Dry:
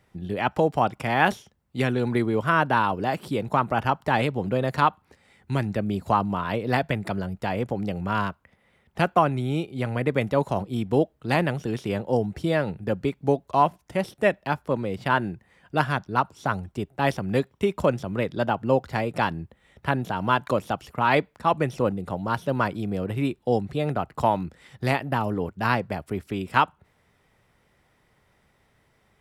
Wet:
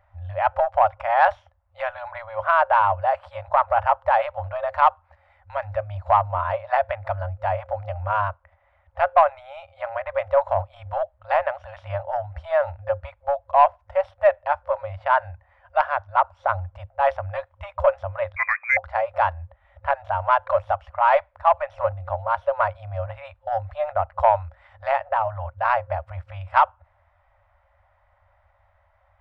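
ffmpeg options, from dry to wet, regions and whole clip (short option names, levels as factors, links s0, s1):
-filter_complex "[0:a]asettb=1/sr,asplit=3[s0][s1][s2];[s0]atrim=end=18.364[s3];[s1]atrim=start=18.36:end=18.77,asetpts=PTS-STARTPTS,afade=t=in:d=0.004:c=qsin,afade=t=out:st=0.406:d=0.004:c=qsin,highpass=f=240:p=1,equalizer=f=490:w=1.1:g=5,lowpass=f=2200:t=q:w=0.5098,lowpass=f=2200:t=q:w=0.6013,lowpass=f=2200:t=q:w=0.9,lowpass=f=2200:t=q:w=2.563,afreqshift=-2600[s4];[s2]atrim=start=18.766[s5];[s3][s4]acrossfade=d=0.004:c1=hsin:c2=qsin[s6];[s6][s5]acrossfade=d=0.004:c1=qsin:c2=hsin,lowpass=1200,acontrast=84,afftfilt=real='re*(1-between(b*sr/4096,100,530))':imag='im*(1-between(b*sr/4096,100,530))':win_size=4096:overlap=0.75"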